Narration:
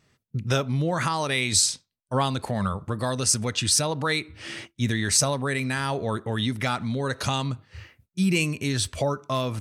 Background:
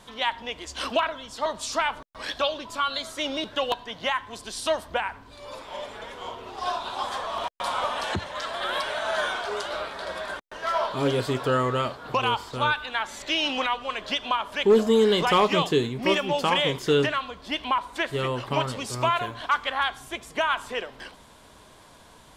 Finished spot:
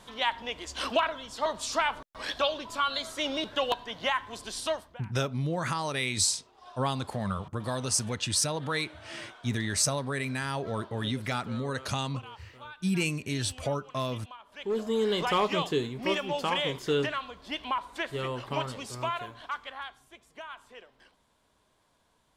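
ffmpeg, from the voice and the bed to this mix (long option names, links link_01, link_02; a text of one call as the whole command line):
ffmpeg -i stem1.wav -i stem2.wav -filter_complex "[0:a]adelay=4650,volume=-5.5dB[link_01];[1:a]volume=14dB,afade=type=out:start_time=4.56:duration=0.4:silence=0.1,afade=type=in:start_time=14.45:duration=0.74:silence=0.158489,afade=type=out:start_time=18.63:duration=1.43:silence=0.237137[link_02];[link_01][link_02]amix=inputs=2:normalize=0" out.wav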